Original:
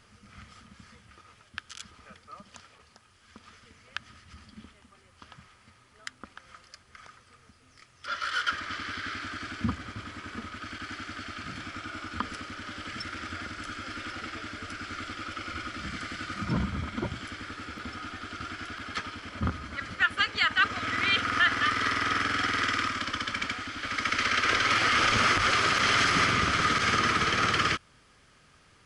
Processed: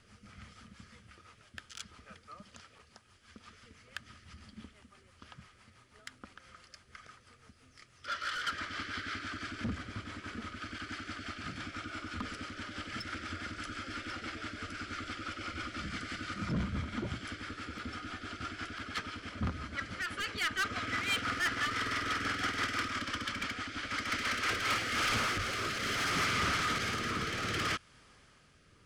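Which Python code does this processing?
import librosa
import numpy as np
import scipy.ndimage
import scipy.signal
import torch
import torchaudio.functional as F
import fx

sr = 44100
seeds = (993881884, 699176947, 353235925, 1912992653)

y = 10.0 ** (-26.5 / 20.0) * np.tanh(x / 10.0 ** (-26.5 / 20.0))
y = fx.rotary_switch(y, sr, hz=6.0, then_hz=0.65, switch_at_s=24.28)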